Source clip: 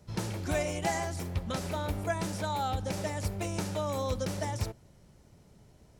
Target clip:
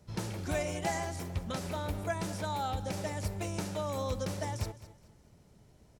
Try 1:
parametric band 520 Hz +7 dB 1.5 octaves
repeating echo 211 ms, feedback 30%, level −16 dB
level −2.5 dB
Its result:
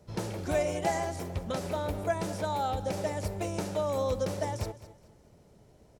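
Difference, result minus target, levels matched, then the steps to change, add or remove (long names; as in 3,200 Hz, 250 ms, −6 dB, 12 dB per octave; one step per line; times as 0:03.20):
500 Hz band +3.0 dB
remove: parametric band 520 Hz +7 dB 1.5 octaves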